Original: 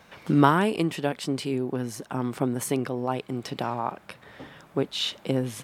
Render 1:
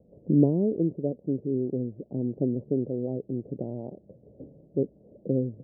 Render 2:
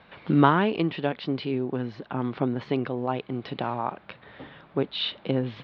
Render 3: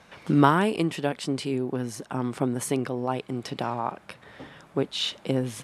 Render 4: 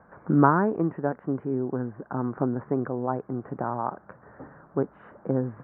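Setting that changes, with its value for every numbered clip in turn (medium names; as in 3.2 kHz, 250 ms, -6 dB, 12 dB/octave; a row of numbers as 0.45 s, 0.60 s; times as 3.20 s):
steep low-pass, frequency: 570 Hz, 4.2 kHz, 12 kHz, 1.6 kHz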